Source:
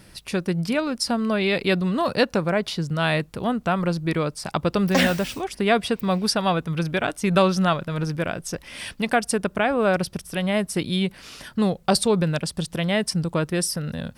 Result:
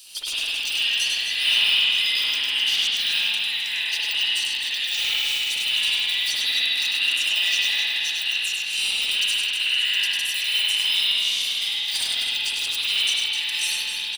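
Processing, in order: every band turned upside down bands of 1 kHz; de-esser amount 80%; Chebyshev high-pass 2.9 kHz, order 4; waveshaping leveller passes 1; saturation -30.5 dBFS, distortion -15 dB; reverse bouncing-ball echo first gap 100 ms, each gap 1.6×, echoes 5; spring tank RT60 2.5 s, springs 52 ms, chirp 30 ms, DRR -9 dB; trim +8.5 dB

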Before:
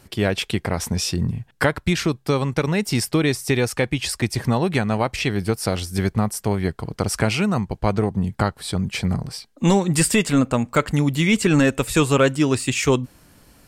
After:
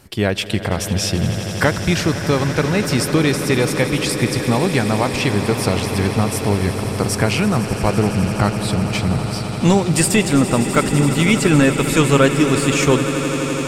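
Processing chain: echo with a slow build-up 84 ms, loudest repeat 8, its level -15 dB; trim +2.5 dB

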